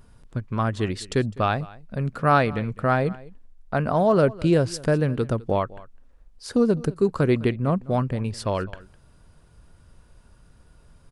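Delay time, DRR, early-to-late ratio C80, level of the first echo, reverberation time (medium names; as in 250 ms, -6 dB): 206 ms, no reverb, no reverb, -21.0 dB, no reverb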